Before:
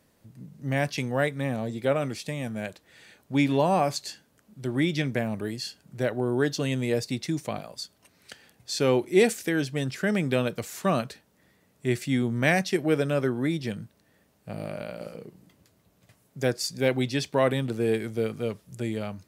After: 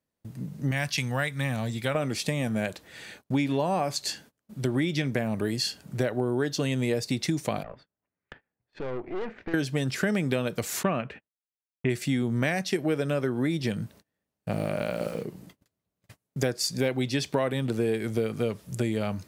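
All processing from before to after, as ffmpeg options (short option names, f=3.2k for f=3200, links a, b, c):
-filter_complex "[0:a]asettb=1/sr,asplit=3[a][b][c];[a]atrim=end=0.714[d];[b]atrim=start=0.71:end=1.95,asetpts=PTS-STARTPTS,afade=t=in:d=0.004:c=qsin,afade=t=out:st=1.236:d=0.004:c=qsin,equalizer=f=400:t=o:w=2.1:g=-13.5,asoftclip=type=hard:threshold=-17.5dB[e];[c]atrim=start=1.946[f];[d][e]acrossfade=d=0.004:c1=hsin:c2=qsin[g];[g][f]acrossfade=d=0.004:c1=qsin:c2=hsin,asettb=1/sr,asplit=3[h][i][j];[h]atrim=end=7.634[k];[i]atrim=start=7.63:end=9.54,asetpts=PTS-STARTPTS,afade=t=in:d=0.004:c=qsin,afade=t=out:st=1.906:d=0.004:c=qsin,lowpass=f=2.1k:w=0.5412,lowpass=f=2.1k:w=1.3066,acompressor=threshold=-37dB:ratio=2.5:attack=3.2:release=140:knee=1:detection=peak,aeval=exprs='(tanh(79.4*val(0)+0.8)-tanh(0.8))/79.4':c=same[l];[j]atrim=start=9.536[m];[k][l]acrossfade=d=0.004:c1=hsin:c2=qsin[n];[n][m]acrossfade=d=0.004:c1=qsin:c2=hsin,asettb=1/sr,asplit=3[o][p][q];[o]atrim=end=10.834[r];[p]atrim=start=10.83:end=11.9,asetpts=PTS-STARTPTS,afade=t=in:d=0.004:c=qsin,afade=t=out:st=1.066:d=0.004:c=qsin,adynamicsmooth=sensitivity=2.5:basefreq=3.4k,agate=range=-37dB:threshold=-56dB:ratio=16:release=100:detection=peak,highshelf=f=3.4k:t=q:w=3:g=-8[s];[q]atrim=start=11.896[t];[r][s]acrossfade=d=0.004:c1=hsin:c2=qsin[u];[u][t]acrossfade=d=0.004:c1=qsin:c2=hsin,asettb=1/sr,asplit=3[v][w][x];[v]atrim=end=14.514[y];[w]atrim=start=14.51:end=15.23,asetpts=PTS-STARTPTS,afade=t=in:d=0.004:c=qsin,afade=t=out:st=0.716:d=0.004:c=qsin,bandreject=f=4.7k:w=13,aeval=exprs='val(0)*gte(abs(val(0)),0.00224)':c=same[z];[x]atrim=start=15.226[aa];[y][z]acrossfade=d=0.004:c1=hsin:c2=qsin[ab];[ab][aa]acrossfade=d=0.004:c1=qsin:c2=hsin,agate=range=-29dB:threshold=-56dB:ratio=16:detection=peak,acompressor=threshold=-32dB:ratio=6,volume=8.5dB"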